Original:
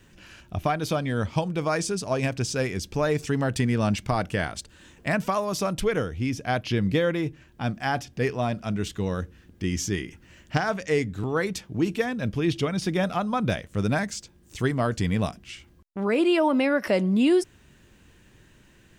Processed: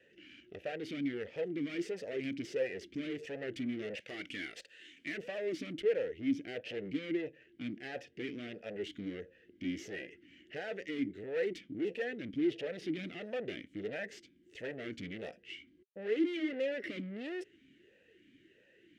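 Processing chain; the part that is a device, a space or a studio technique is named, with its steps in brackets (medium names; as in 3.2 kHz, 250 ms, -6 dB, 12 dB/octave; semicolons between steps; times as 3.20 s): 4.00–5.18 s: tilt shelf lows -10 dB, about 910 Hz; talk box (valve stage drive 32 dB, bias 0.7; talking filter e-i 1.5 Hz); trim +8.5 dB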